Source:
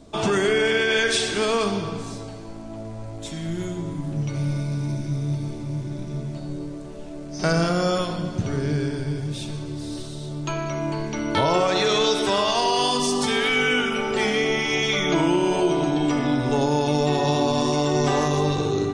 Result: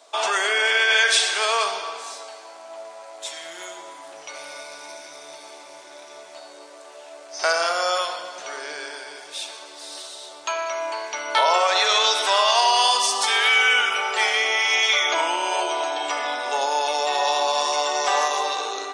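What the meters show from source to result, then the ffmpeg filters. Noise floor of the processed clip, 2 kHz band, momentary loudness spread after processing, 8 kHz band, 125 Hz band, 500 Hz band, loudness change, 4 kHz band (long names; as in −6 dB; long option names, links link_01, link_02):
−43 dBFS, +5.0 dB, 20 LU, +5.0 dB, below −40 dB, −4.0 dB, +3.0 dB, +5.0 dB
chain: -af "highpass=frequency=650:width=0.5412,highpass=frequency=650:width=1.3066,volume=5dB"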